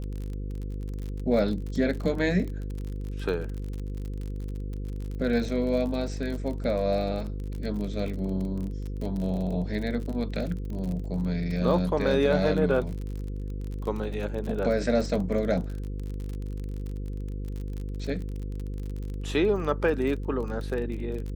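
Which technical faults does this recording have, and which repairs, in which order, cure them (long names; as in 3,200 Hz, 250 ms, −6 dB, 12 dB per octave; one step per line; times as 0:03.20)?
mains buzz 50 Hz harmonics 10 −33 dBFS
surface crackle 36 per second −33 dBFS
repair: click removal
hum removal 50 Hz, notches 10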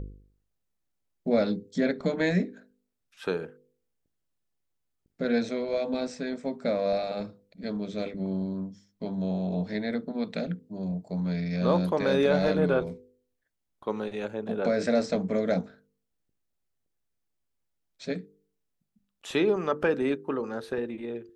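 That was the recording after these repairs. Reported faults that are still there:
none of them is left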